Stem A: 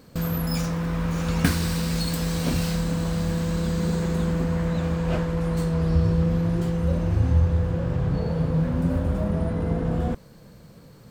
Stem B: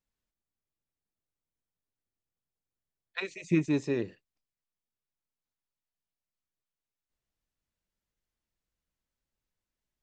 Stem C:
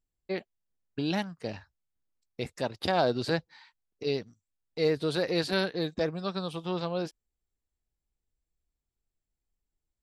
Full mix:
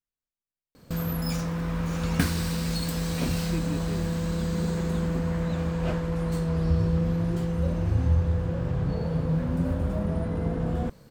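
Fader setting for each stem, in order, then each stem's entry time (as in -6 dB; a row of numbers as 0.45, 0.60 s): -3.0 dB, -9.5 dB, off; 0.75 s, 0.00 s, off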